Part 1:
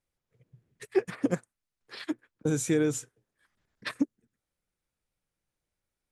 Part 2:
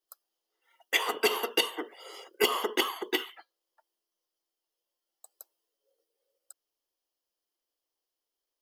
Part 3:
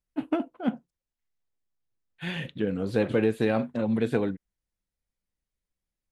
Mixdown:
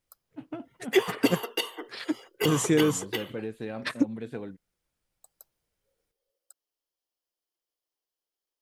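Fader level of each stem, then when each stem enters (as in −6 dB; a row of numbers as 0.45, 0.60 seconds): +3.0, −3.5, −11.5 decibels; 0.00, 0.00, 0.20 seconds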